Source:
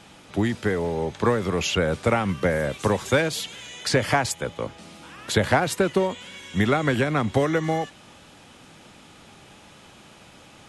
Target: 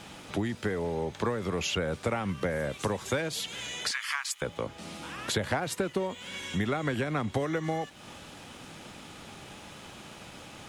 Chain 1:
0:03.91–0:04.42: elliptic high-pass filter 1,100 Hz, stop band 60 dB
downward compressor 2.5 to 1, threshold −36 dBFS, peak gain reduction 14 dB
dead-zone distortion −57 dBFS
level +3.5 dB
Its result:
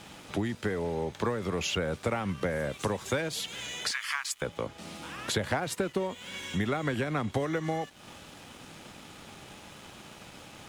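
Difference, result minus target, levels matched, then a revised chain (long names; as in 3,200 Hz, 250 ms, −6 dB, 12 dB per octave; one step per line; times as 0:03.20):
dead-zone distortion: distortion +8 dB
0:03.91–0:04.42: elliptic high-pass filter 1,100 Hz, stop band 60 dB
downward compressor 2.5 to 1, threshold −36 dBFS, peak gain reduction 14 dB
dead-zone distortion −65 dBFS
level +3.5 dB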